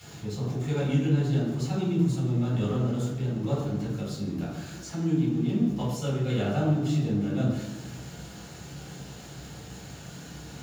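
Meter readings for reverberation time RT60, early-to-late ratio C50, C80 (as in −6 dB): 1.2 s, 1.5 dB, 4.5 dB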